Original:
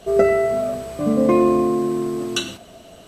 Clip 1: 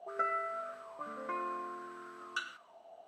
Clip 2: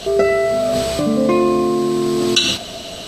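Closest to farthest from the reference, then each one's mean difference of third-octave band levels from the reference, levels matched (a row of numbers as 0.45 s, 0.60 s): 2, 1; 5.5 dB, 7.5 dB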